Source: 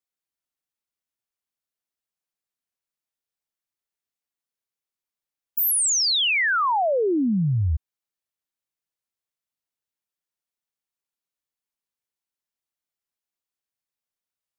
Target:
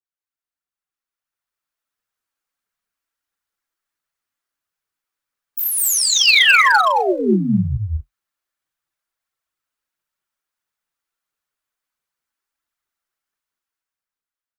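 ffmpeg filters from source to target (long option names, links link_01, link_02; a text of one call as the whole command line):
ffmpeg -i in.wav -filter_complex "[0:a]equalizer=frequency=1400:width=1.3:gain=9,alimiter=limit=-13.5dB:level=0:latency=1:release=335,dynaudnorm=framelen=230:gausssize=11:maxgain=10.5dB,aphaser=in_gain=1:out_gain=1:delay=3.8:decay=0.54:speed=1.5:type=triangular,asettb=1/sr,asplit=3[link_01][link_02][link_03];[link_01]atrim=end=6.244[link_04];[link_02]atrim=start=6.24:end=6.81,asetpts=PTS-STARTPTS,afade=type=in:duration=0.004:curve=qsin,afade=type=out:start_time=0.566:duration=0.004:curve=qsin,highpass=frequency=470:width_type=q:width=4.2[link_05];[link_03]atrim=start=6.806[link_06];[link_04][link_05]acrossfade=duration=0.004:curve1=hsin:curve2=qsin[link_07];[link_07][link_06]acrossfade=duration=0.004:curve1=qsin:curve2=hsin,flanger=delay=2.3:depth=9.7:regen=-47:speed=0.32:shape=triangular,asoftclip=type=hard:threshold=-4.5dB,asplit=2[link_08][link_09];[link_09]aecho=0:1:204.1|242:0.891|0.501[link_10];[link_08][link_10]amix=inputs=2:normalize=0,adynamicequalizer=threshold=0.224:dfrequency=2000:dqfactor=0.7:tfrequency=2000:tqfactor=0.7:attack=5:release=100:ratio=0.375:range=2:mode=boostabove:tftype=highshelf,volume=-6.5dB" out.wav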